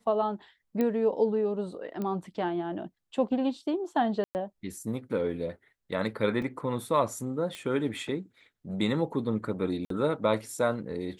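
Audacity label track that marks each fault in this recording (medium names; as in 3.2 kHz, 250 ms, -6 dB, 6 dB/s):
0.810000	0.810000	pop -17 dBFS
2.020000	2.020000	pop -22 dBFS
4.240000	4.350000	dropout 109 ms
6.420000	6.420000	dropout 4 ms
7.550000	7.550000	pop -23 dBFS
9.850000	9.900000	dropout 53 ms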